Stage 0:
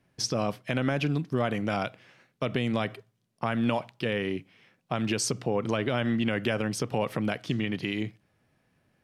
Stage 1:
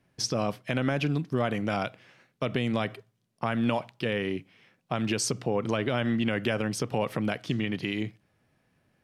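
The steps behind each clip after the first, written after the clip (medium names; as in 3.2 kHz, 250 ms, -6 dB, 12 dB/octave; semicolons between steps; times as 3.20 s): no audible change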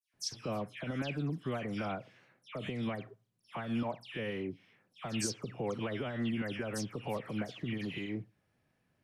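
peak limiter -19.5 dBFS, peak gain reduction 8 dB; phase dispersion lows, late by 138 ms, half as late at 2.5 kHz; trim -6.5 dB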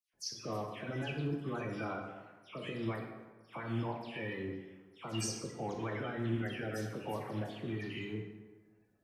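coarse spectral quantiser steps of 30 dB; short-mantissa float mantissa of 8-bit; plate-style reverb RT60 1.3 s, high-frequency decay 0.6×, DRR 1.5 dB; trim -3.5 dB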